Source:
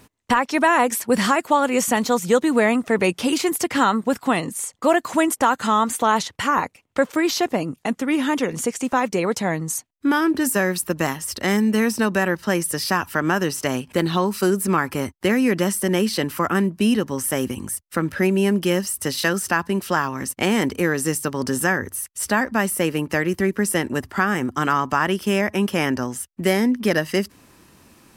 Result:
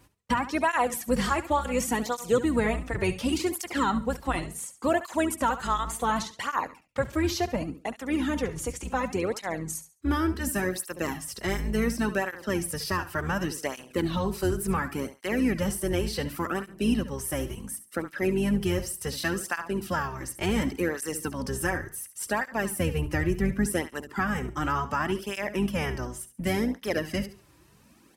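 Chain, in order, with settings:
sub-octave generator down 2 octaves, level −2 dB
0:22.78–0:23.96: low-shelf EQ 150 Hz +7.5 dB
repeating echo 70 ms, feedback 26%, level −13 dB
through-zero flanger with one copy inverted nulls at 0.69 Hz, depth 4.8 ms
level −5.5 dB

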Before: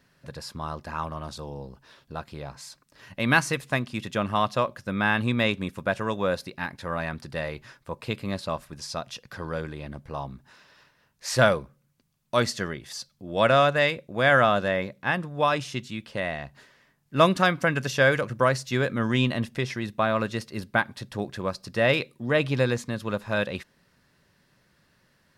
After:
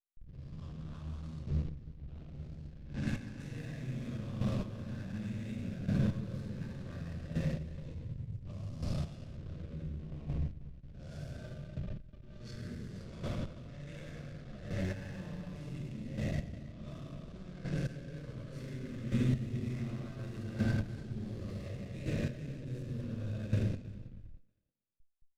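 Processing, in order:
peak hold with a rise ahead of every peak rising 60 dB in 1.45 s
0:05.64–0:06.44: parametric band 140 Hz +14.5 dB 0.53 octaves
0:07.92–0:08.45: Chebyshev band-stop filter 130–7,200 Hz, order 3
0:11.30–0:12.37: stiff-string resonator 180 Hz, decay 0.24 s, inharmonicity 0.03
compressor whose output falls as the input rises −25 dBFS, ratio −1
convolution reverb RT60 2.9 s, pre-delay 5 ms, DRR −9.5 dB
slack as between gear wheels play −14 dBFS
low-pass that shuts in the quiet parts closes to 2,600 Hz, open at −12 dBFS
square-wave tremolo 0.68 Hz, depth 65%, duty 15%
guitar amp tone stack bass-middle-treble 10-0-1
feedback echo with a high-pass in the loop 318 ms, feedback 21%, high-pass 250 Hz, level −20 dB
level +1 dB

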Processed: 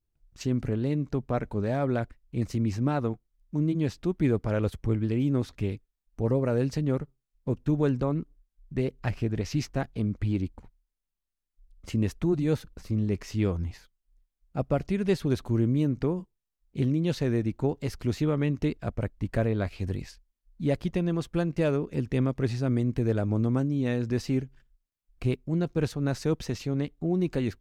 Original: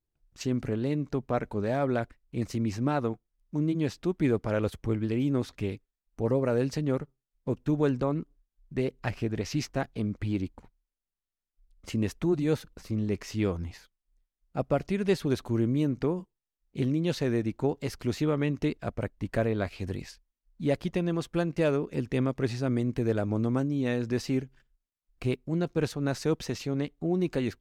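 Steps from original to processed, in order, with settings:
low-shelf EQ 170 Hz +8 dB
level −1.5 dB

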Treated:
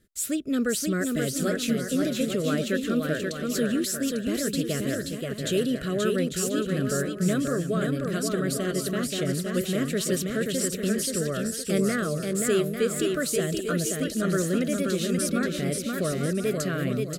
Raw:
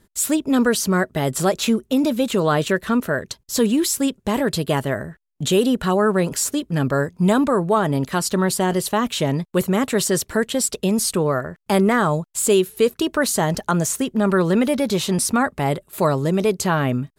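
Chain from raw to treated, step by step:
Butterworth band-reject 900 Hz, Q 1.3
on a send: bouncing-ball delay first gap 530 ms, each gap 0.6×, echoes 5
on the sum: level −8 dB

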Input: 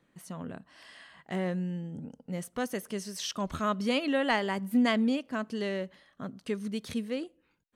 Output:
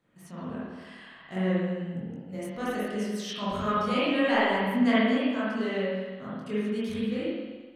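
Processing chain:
chorus effect 0.86 Hz, delay 20 ms, depth 4.6 ms
spring reverb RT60 1.3 s, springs 43/52 ms, chirp 70 ms, DRR −8.5 dB
level −2 dB

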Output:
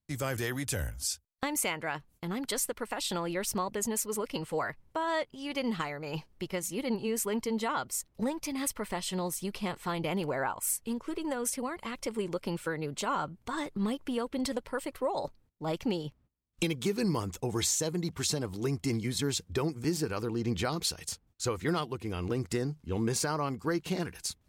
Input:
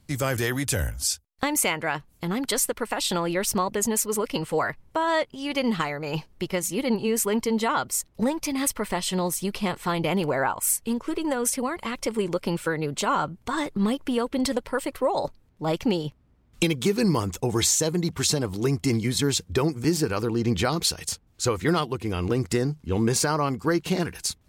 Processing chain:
noise gate −52 dBFS, range −21 dB
level −7.5 dB

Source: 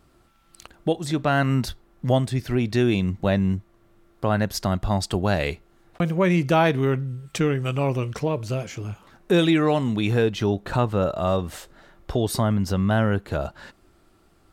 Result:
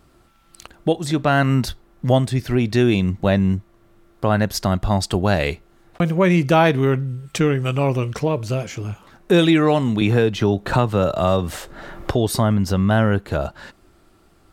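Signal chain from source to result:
0:10.01–0:12.11: multiband upward and downward compressor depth 70%
level +4 dB

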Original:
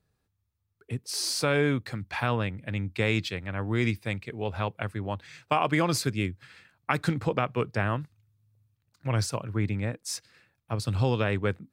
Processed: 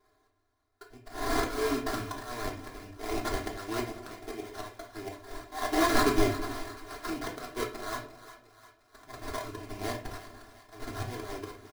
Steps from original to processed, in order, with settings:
high-pass filter 180 Hz 6 dB per octave
low-shelf EQ 360 Hz −10 dB
in parallel at 0 dB: downward compressor 6 to 1, threshold −38 dBFS, peak gain reduction 15.5 dB
on the sum: sample-rate reduction 2,700 Hz, jitter 20%
comb filter 2.9 ms, depth 92%
volume swells 561 ms
echo with a time of its own for lows and highs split 730 Hz, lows 214 ms, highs 353 ms, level −14 dB
convolution reverb RT60 0.40 s, pre-delay 3 ms, DRR −1.5 dB

